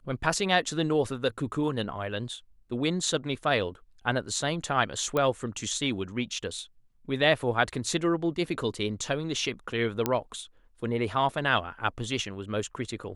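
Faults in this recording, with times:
0:05.17: click −15 dBFS
0:10.06: click −10 dBFS

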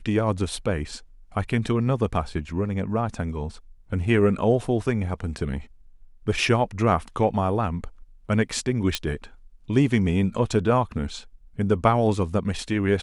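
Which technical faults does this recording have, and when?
0:08.95: click −8 dBFS

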